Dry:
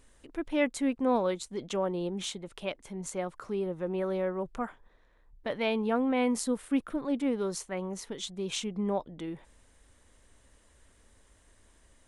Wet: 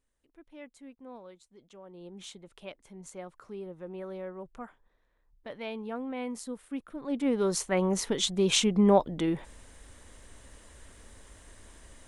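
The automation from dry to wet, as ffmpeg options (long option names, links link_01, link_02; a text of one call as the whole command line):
ffmpeg -i in.wav -af "volume=9.5dB,afade=type=in:start_time=1.84:duration=0.48:silence=0.266073,afade=type=in:start_time=6.94:duration=0.3:silence=0.334965,afade=type=in:start_time=7.24:duration=0.67:silence=0.375837" out.wav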